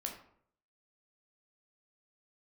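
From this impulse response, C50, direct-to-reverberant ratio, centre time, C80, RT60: 7.0 dB, 1.0 dB, 23 ms, 10.5 dB, 0.65 s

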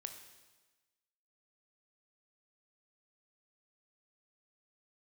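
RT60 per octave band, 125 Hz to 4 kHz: 1.1, 1.2, 1.2, 1.2, 1.2, 1.2 seconds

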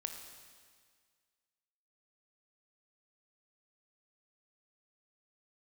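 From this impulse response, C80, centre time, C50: 7.0 dB, 40 ms, 5.5 dB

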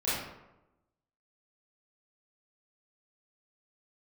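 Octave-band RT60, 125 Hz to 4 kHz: 1.0, 1.0, 1.0, 0.90, 0.75, 0.50 seconds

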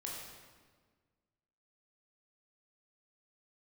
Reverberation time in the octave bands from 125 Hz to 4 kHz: 1.9, 1.9, 1.6, 1.5, 1.3, 1.2 seconds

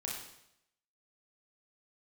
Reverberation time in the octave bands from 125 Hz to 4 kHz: 0.85, 0.80, 0.80, 0.75, 0.75, 0.75 seconds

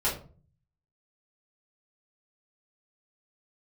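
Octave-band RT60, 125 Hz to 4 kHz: 0.90, 0.65, 0.45, 0.40, 0.30, 0.25 seconds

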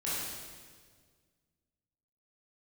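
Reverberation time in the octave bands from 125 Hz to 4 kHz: 2.2, 2.0, 1.9, 1.5, 1.5, 1.5 seconds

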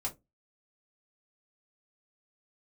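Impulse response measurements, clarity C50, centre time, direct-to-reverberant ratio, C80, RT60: 17.5 dB, 11 ms, −2.5 dB, 27.0 dB, 0.20 s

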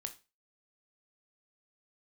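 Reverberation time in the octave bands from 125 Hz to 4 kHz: 0.30, 0.30, 0.30, 0.25, 0.30, 0.30 seconds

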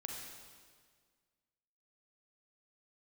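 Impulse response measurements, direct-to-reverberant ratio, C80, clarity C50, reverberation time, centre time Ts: 0.0 dB, 3.0 dB, 1.0 dB, 1.7 s, 79 ms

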